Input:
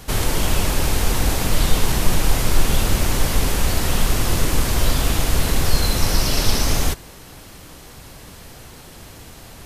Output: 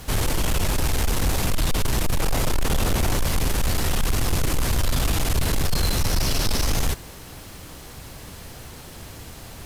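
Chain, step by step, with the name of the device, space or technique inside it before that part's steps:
0:02.19–0:03.17: parametric band 590 Hz +4 dB 2.5 octaves
open-reel tape (soft clipping −16.5 dBFS, distortion −9 dB; parametric band 85 Hz +3 dB 1.13 octaves; white noise bed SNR 36 dB)

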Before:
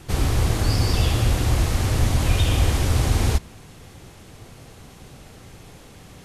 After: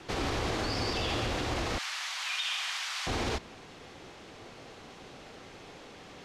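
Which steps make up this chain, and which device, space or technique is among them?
0:01.78–0:03.07: Bessel high-pass filter 1,600 Hz, order 6
DJ mixer with the lows and highs turned down (three-way crossover with the lows and the highs turned down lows −15 dB, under 240 Hz, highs −21 dB, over 6,100 Hz; brickwall limiter −22.5 dBFS, peak gain reduction 6.5 dB)

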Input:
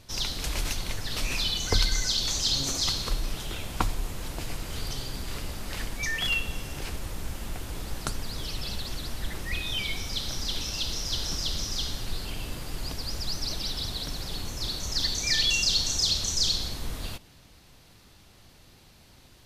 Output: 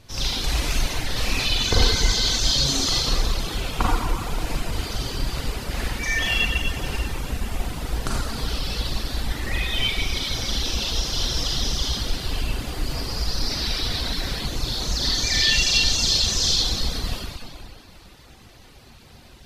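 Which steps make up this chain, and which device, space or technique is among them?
swimming-pool hall (convolution reverb RT60 2.4 s, pre-delay 34 ms, DRR −7 dB; high-shelf EQ 4,700 Hz −5 dB)
reverb reduction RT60 0.65 s
0:13.50–0:14.46: parametric band 2,000 Hz +6 dB 0.87 octaves
level +2 dB

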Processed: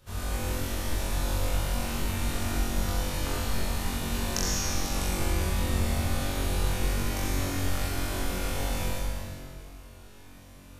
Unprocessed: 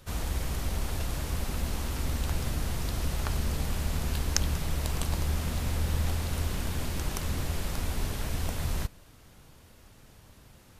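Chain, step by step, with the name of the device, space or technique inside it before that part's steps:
tunnel (flutter between parallel walls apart 3.7 metres, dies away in 0.9 s; convolution reverb RT60 2.5 s, pre-delay 67 ms, DRR −4.5 dB)
level −6.5 dB

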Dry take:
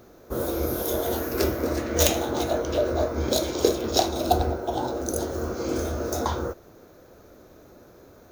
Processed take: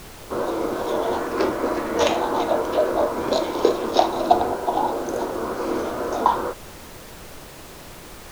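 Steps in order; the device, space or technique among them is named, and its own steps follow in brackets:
horn gramophone (band-pass filter 210–3,500 Hz; parametric band 990 Hz +11 dB 0.56 octaves; tape wow and flutter; pink noise bed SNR 17 dB)
level +2.5 dB

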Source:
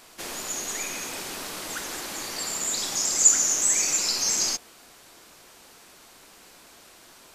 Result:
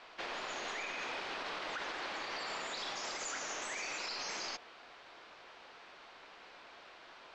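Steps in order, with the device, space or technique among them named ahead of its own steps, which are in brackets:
high-frequency loss of the air 120 metres
DJ mixer with the lows and highs turned down (three-way crossover with the lows and the highs turned down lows −13 dB, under 450 Hz, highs −22 dB, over 4,700 Hz; brickwall limiter −32.5 dBFS, peak gain reduction 9 dB)
level +1 dB

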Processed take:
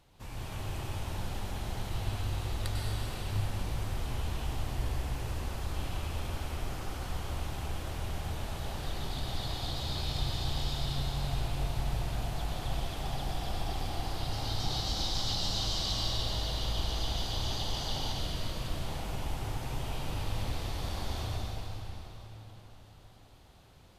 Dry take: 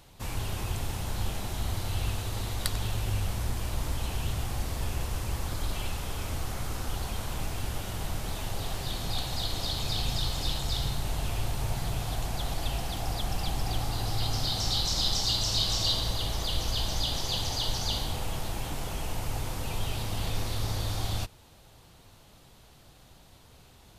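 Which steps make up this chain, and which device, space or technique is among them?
swimming-pool hall (convolution reverb RT60 4.3 s, pre-delay 93 ms, DRR −5 dB; high-shelf EQ 5,100 Hz −6.5 dB)
0:18.18–0:18.86: notch filter 830 Hz, Q 5.3
level −8.5 dB

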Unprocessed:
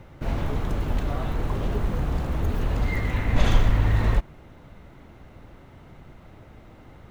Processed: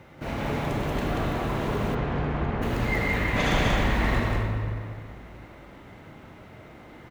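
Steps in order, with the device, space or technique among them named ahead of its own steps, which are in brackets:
stadium PA (high-pass filter 180 Hz 6 dB per octave; parametric band 2,100 Hz +3 dB; loudspeakers that aren't time-aligned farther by 63 metres −3 dB, 89 metres −12 dB; convolution reverb RT60 2.4 s, pre-delay 28 ms, DRR 2 dB)
0:01.94–0:02.61: low-pass filter 3,800 Hz → 2,300 Hz 12 dB per octave

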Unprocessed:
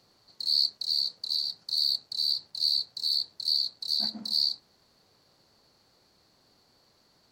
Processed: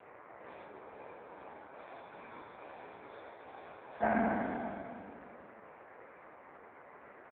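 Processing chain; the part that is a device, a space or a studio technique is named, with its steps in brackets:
peak hold with a decay on every bin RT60 2.75 s
Butterworth low-pass 2,400 Hz 48 dB per octave
0:00.66–0:01.77: high-shelf EQ 2,700 Hz −10.5 dB
satellite phone (band-pass filter 390–3,000 Hz; single-tap delay 495 ms −21 dB; level +16 dB; AMR narrowband 4.75 kbit/s 8,000 Hz)

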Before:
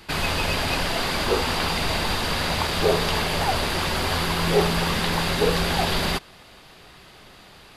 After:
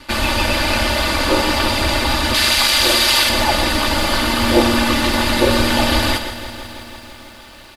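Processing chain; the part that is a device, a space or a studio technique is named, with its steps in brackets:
0:02.34–0:03.29: tilt shelving filter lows −9 dB, about 1,200 Hz
ring-modulated robot voice (ring modulation 67 Hz; comb filter 3.4 ms, depth 79%)
single-tap delay 123 ms −10.5 dB
feedback echo at a low word length 165 ms, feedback 80%, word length 8 bits, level −14.5 dB
level +7 dB

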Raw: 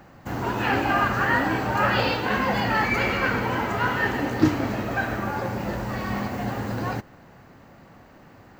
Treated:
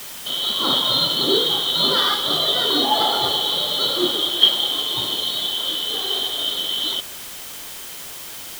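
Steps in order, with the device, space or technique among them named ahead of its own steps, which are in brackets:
split-band scrambled radio (band-splitting scrambler in four parts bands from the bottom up 2413; band-pass filter 310–3,300 Hz; white noise bed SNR 13 dB)
level +7 dB

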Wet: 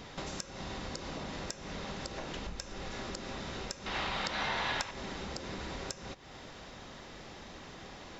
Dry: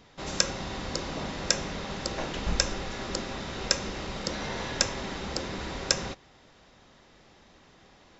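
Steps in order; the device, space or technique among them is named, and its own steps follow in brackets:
serial compression, peaks first (downward compressor 6 to 1, threshold −42 dBFS, peak gain reduction 22.5 dB; downward compressor 2 to 1, threshold −49 dBFS, peak gain reduction 8 dB)
0:03.86–0:04.91: flat-topped bell 1,700 Hz +10 dB 2.9 octaves
level +8.5 dB

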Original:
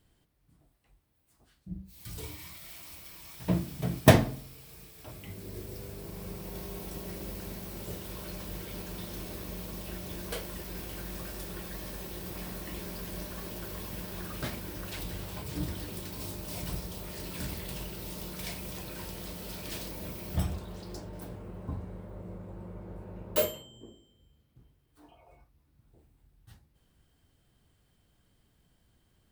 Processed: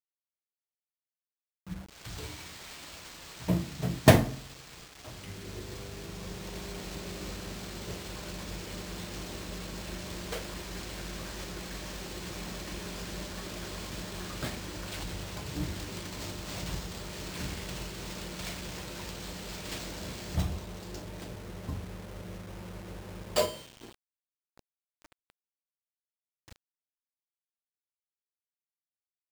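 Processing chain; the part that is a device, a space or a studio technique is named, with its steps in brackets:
early 8-bit sampler (sample-rate reduction 12,000 Hz, jitter 0%; bit reduction 8 bits)

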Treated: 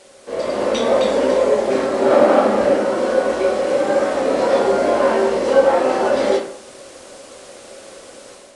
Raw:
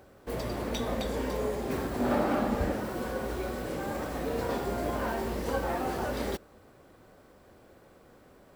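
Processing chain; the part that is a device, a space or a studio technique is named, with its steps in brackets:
filmed off a television (band-pass filter 270–7,800 Hz; parametric band 550 Hz +6 dB 0.36 octaves; convolution reverb RT60 0.55 s, pre-delay 8 ms, DRR −3 dB; white noise bed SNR 24 dB; automatic gain control gain up to 7.5 dB; level +2 dB; AAC 96 kbit/s 22,050 Hz)

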